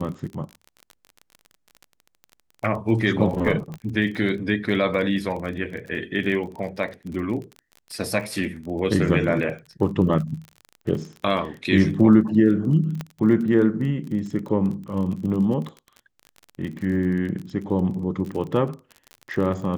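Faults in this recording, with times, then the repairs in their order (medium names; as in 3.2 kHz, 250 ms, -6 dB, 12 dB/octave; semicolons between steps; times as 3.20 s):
crackle 34 per s -31 dBFS
3.74 s: pop -22 dBFS
13.01 s: pop -16 dBFS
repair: de-click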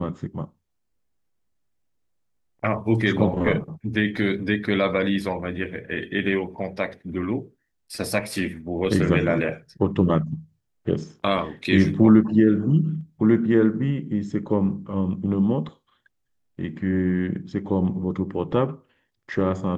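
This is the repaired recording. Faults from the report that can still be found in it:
3.74 s: pop
13.01 s: pop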